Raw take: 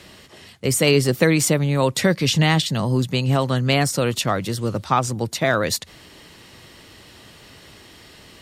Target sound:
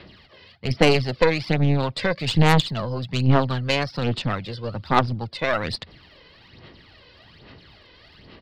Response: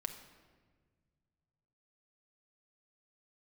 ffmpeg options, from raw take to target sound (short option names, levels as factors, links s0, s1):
-af "aresample=11025,aresample=44100,aphaser=in_gain=1:out_gain=1:delay=2:decay=0.6:speed=1.2:type=sinusoidal,aeval=exprs='1.5*(cos(1*acos(clip(val(0)/1.5,-1,1)))-cos(1*PI/2))+0.237*(cos(6*acos(clip(val(0)/1.5,-1,1)))-cos(6*PI/2))':c=same,volume=0.501"